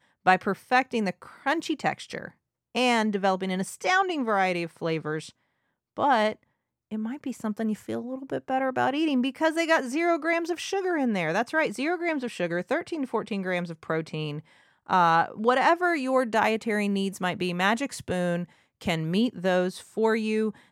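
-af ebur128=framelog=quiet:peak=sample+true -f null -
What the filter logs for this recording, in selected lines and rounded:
Integrated loudness:
  I:         -26.4 LUFS
  Threshold: -36.7 LUFS
Loudness range:
  LRA:         4.9 LU
  Threshold: -46.8 LUFS
  LRA low:   -29.5 LUFS
  LRA high:  -24.7 LUFS
Sample peak:
  Peak:       -6.1 dBFS
True peak:
  Peak:       -6.1 dBFS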